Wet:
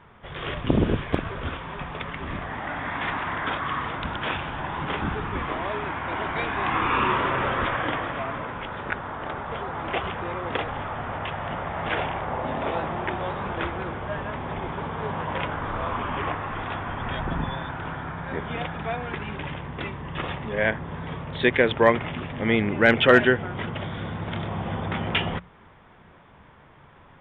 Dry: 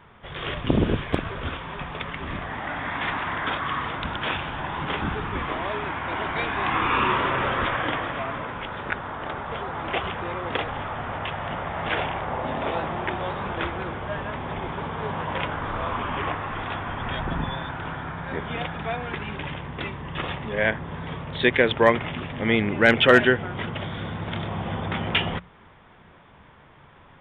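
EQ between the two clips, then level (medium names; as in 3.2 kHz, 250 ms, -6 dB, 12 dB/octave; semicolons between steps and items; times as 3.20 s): treble shelf 4.9 kHz -9.5 dB; 0.0 dB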